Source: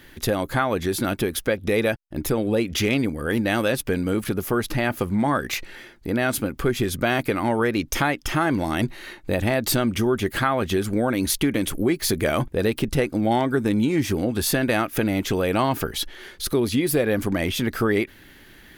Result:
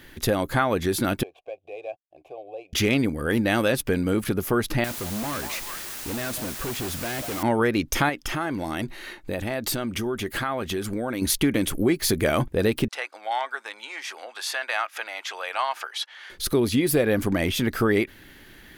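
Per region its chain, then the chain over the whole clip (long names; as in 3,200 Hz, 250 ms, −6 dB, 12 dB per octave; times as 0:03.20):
0:01.23–0:02.73: running median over 9 samples + formant filter a + phaser with its sweep stopped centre 540 Hz, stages 4
0:04.84–0:07.43: echo through a band-pass that steps 192 ms, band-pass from 770 Hz, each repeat 0.7 octaves, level −11 dB + tube saturation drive 28 dB, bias 0.4 + bit-depth reduction 6 bits, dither triangular
0:08.09–0:11.22: downward compressor 2.5 to 1, threshold −24 dBFS + parametric band 89 Hz −4 dB 2.7 octaves
0:12.88–0:16.30: high-pass filter 780 Hz 24 dB per octave + high-frequency loss of the air 67 metres
whole clip: no processing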